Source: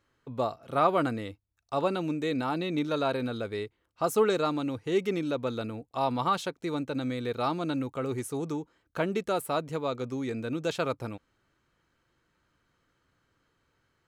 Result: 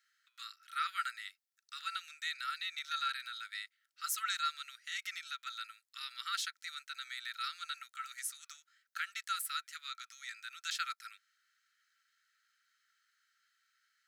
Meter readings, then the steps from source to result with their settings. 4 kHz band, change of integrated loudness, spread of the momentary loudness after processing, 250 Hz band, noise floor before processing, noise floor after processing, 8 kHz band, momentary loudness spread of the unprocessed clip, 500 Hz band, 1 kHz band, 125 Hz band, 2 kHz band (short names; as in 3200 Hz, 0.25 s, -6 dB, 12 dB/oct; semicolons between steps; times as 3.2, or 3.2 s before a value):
+1.5 dB, -9.5 dB, 12 LU, under -40 dB, -75 dBFS, -84 dBFS, +2.5 dB, 10 LU, under -40 dB, -9.5 dB, under -40 dB, -1.0 dB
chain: rippled Chebyshev high-pass 1300 Hz, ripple 6 dB; high shelf 9600 Hz +7 dB; gain +3 dB